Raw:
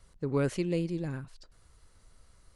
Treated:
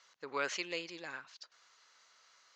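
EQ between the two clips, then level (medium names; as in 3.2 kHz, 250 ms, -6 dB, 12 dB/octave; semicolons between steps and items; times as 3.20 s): high-pass 1.1 kHz 12 dB/octave; elliptic low-pass 6.7 kHz, stop band 40 dB; +6.5 dB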